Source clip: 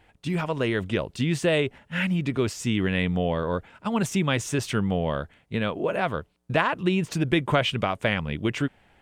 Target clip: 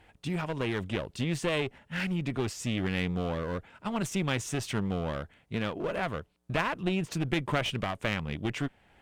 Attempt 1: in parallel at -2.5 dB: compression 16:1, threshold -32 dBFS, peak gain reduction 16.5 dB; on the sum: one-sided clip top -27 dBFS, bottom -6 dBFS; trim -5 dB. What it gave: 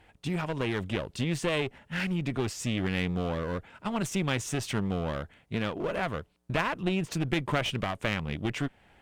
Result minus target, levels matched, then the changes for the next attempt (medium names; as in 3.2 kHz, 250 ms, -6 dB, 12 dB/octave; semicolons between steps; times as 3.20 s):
compression: peak gain reduction -10.5 dB
change: compression 16:1, threshold -43 dBFS, peak gain reduction 27 dB